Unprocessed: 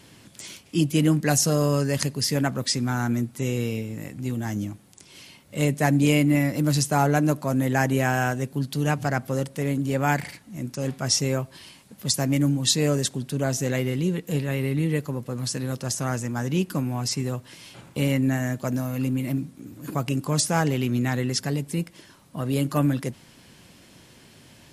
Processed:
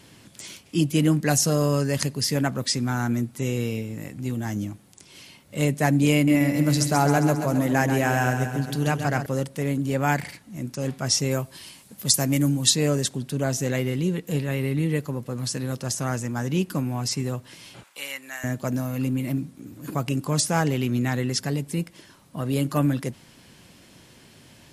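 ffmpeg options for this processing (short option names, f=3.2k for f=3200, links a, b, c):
-filter_complex "[0:a]asettb=1/sr,asplit=3[a][b][c];[a]atrim=end=6.144[d];[b]atrim=start=6.14:end=9.26,asetpts=PTS-STARTPTS,afade=t=in:d=0.004:c=qsin,afade=t=out:st=3.116:d=0.004:c=qsin,aecho=1:1:134|268|402|536|670|804|938:0.398|0.235|0.139|0.0818|0.0482|0.0285|0.0168,atrim=end_sample=137592[e];[c]atrim=start=9.256[f];[d][e]acrossfade=d=0.004:c1=hsin:c2=qsin[g];[g][f]acrossfade=d=0.004:c1=qsin:c2=hsin,asettb=1/sr,asplit=3[h][i][j];[h]atrim=end=11.314[k];[i]atrim=start=11.31:end=12.7,asetpts=PTS-STARTPTS,afade=t=in:d=0.004:c=qsin,afade=t=out:st=1.386:d=0.004:c=qsin,highshelf=f=6.1k:g=9[l];[j]atrim=start=12.696[m];[k][l]acrossfade=d=0.004:c1=hsin:c2=qsin[n];[n][m]acrossfade=d=0.004:c1=qsin:c2=hsin,asettb=1/sr,asplit=3[o][p][q];[o]atrim=end=17.834[r];[p]atrim=start=17.83:end=18.44,asetpts=PTS-STARTPTS,afade=t=in:d=0.004:c=qsin,afade=t=out:st=0.606:d=0.004:c=qsin,highpass=1.2k[s];[q]atrim=start=18.436[t];[r][s]acrossfade=d=0.004:c1=hsin:c2=qsin[u];[u][t]acrossfade=d=0.004:c1=qsin:c2=hsin"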